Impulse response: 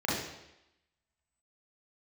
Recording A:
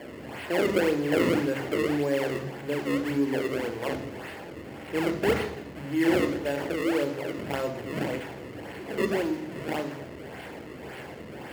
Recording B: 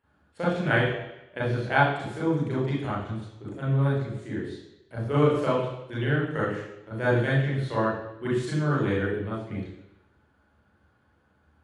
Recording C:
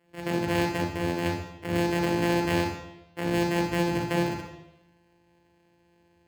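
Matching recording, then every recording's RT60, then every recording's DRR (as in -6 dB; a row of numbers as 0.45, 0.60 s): B; 0.90, 0.90, 0.90 s; 8.5, -7.5, 2.5 dB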